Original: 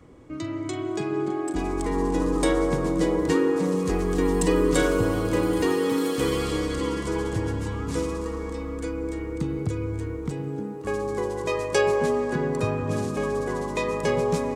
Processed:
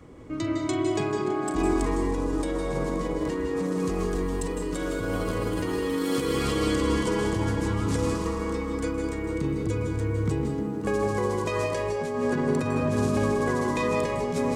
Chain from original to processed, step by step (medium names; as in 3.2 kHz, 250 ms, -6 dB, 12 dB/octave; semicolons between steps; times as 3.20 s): compressor with a negative ratio -27 dBFS, ratio -1; reverberation RT60 0.55 s, pre-delay 154 ms, DRR 3 dB